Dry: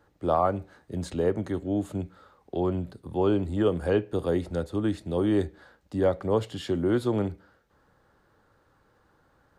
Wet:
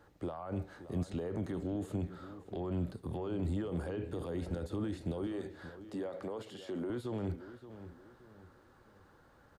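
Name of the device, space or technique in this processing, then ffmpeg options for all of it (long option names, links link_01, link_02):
de-esser from a sidechain: -filter_complex "[0:a]asplit=2[link_01][link_02];[link_02]highpass=frequency=5700:poles=1,apad=whole_len=422494[link_03];[link_01][link_03]sidechaincompress=threshold=-58dB:ratio=10:attack=2.3:release=26,asettb=1/sr,asplit=3[link_04][link_05][link_06];[link_04]atrim=end=5.274[link_07];[link_05]atrim=start=5.27:end=6.9,asetpts=PTS-STARTPTS,afade=type=in:duration=0.004:curve=qsin,afade=type=out:start_time=1.626:duration=0.004:curve=qsin,highpass=250[link_08];[link_06]atrim=start=6.896[link_09];[link_07][link_08]acrossfade=duration=0.004:curve1=hsin:curve2=qsin[link_10];[link_10][link_09]acrossfade=duration=0.004:curve1=qsin:curve2=hsin,asplit=2[link_11][link_12];[link_12]adelay=575,lowpass=frequency=3500:poles=1,volume=-13dB,asplit=2[link_13][link_14];[link_14]adelay=575,lowpass=frequency=3500:poles=1,volume=0.37,asplit=2[link_15][link_16];[link_16]adelay=575,lowpass=frequency=3500:poles=1,volume=0.37,asplit=2[link_17][link_18];[link_18]adelay=575,lowpass=frequency=3500:poles=1,volume=0.37[link_19];[link_11][link_13][link_15][link_17][link_19]amix=inputs=5:normalize=0,volume=1dB"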